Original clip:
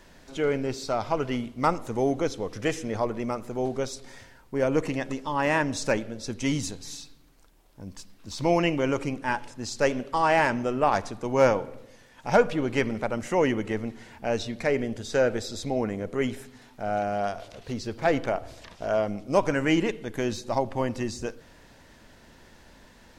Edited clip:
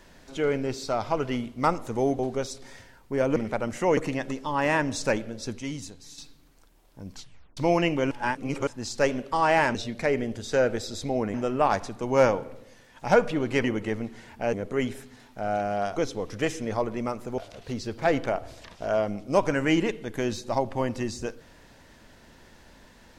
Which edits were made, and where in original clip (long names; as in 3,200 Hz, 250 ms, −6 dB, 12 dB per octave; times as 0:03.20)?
0:02.19–0:03.61: move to 0:17.38
0:06.40–0:06.99: clip gain −7.5 dB
0:07.93: tape stop 0.45 s
0:08.92–0:09.48: reverse
0:12.86–0:13.47: move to 0:04.78
0:14.36–0:15.95: move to 0:10.56